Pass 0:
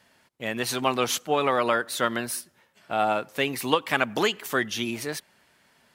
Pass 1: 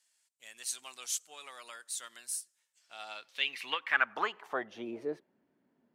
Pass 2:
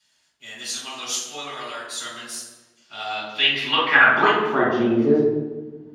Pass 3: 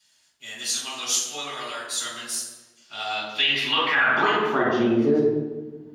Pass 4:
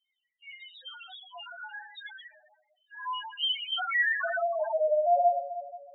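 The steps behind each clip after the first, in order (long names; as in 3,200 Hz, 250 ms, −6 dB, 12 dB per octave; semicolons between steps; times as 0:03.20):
band-pass filter sweep 7,900 Hz → 280 Hz, 0:02.71–0:05.37
convolution reverb RT60 1.2 s, pre-delay 3 ms, DRR −10 dB; level −3.5 dB
high-shelf EQ 4,200 Hz +7 dB; brickwall limiter −10.5 dBFS, peak gain reduction 9.5 dB; level −1 dB
single-sideband voice off tune +260 Hz 310–3,100 Hz; spectral peaks only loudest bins 2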